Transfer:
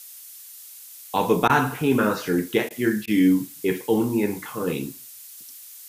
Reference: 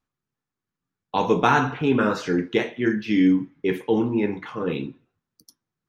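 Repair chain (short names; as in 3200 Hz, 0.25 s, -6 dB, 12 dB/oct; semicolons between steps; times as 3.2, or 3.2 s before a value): interpolate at 1.48/2.69/3.06, 14 ms; noise print and reduce 30 dB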